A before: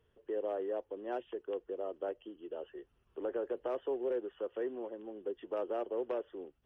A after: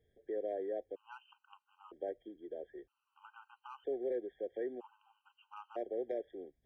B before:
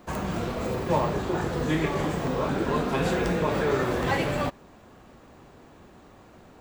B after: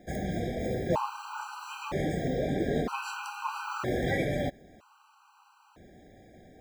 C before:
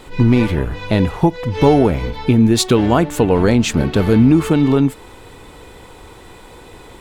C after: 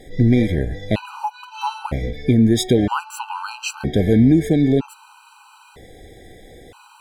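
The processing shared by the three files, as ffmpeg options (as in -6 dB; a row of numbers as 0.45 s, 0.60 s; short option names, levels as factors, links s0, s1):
-af "afftfilt=real='re*gt(sin(2*PI*0.52*pts/sr)*(1-2*mod(floor(b*sr/1024/790),2)),0)':imag='im*gt(sin(2*PI*0.52*pts/sr)*(1-2*mod(floor(b*sr/1024/790),2)),0)':win_size=1024:overlap=0.75,volume=0.794"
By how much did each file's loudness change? -2.5 LU, -5.5 LU, -4.5 LU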